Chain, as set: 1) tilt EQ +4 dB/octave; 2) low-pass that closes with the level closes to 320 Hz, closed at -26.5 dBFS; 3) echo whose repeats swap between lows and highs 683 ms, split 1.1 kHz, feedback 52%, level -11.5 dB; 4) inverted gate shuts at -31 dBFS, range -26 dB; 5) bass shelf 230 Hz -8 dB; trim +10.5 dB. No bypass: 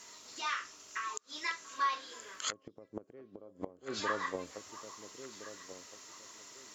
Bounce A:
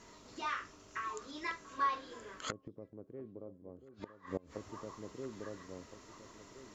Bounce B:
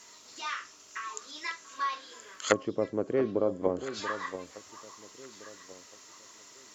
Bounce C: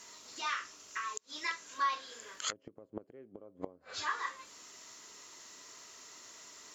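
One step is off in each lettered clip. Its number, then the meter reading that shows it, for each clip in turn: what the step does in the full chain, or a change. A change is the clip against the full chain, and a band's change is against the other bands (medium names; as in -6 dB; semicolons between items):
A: 1, 4 kHz band -7.0 dB; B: 4, momentary loudness spread change +4 LU; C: 3, 500 Hz band -6.0 dB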